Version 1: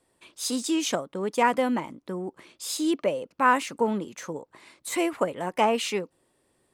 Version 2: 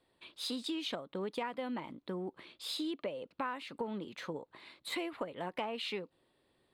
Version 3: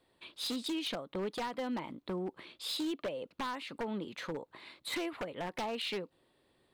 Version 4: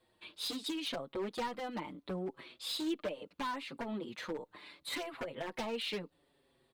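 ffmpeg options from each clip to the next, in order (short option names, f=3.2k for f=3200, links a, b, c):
-af "highshelf=f=5k:t=q:w=3:g=-8,acompressor=threshold=-30dB:ratio=10,volume=-4.5dB"
-af "aeval=exprs='0.0237*(abs(mod(val(0)/0.0237+3,4)-2)-1)':c=same,volume=2.5dB"
-filter_complex "[0:a]asplit=2[a][b];[b]adelay=5.9,afreqshift=-0.72[c];[a][c]amix=inputs=2:normalize=1,volume=2dB"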